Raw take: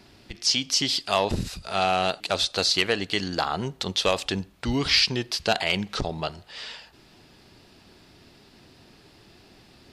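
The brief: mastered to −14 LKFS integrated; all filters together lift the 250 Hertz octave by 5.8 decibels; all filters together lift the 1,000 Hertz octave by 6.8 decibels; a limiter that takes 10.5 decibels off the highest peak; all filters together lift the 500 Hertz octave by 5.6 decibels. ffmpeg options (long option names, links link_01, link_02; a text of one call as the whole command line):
ffmpeg -i in.wav -af "equalizer=frequency=250:width_type=o:gain=6,equalizer=frequency=500:width_type=o:gain=3,equalizer=frequency=1000:width_type=o:gain=8,volume=12dB,alimiter=limit=-2dB:level=0:latency=1" out.wav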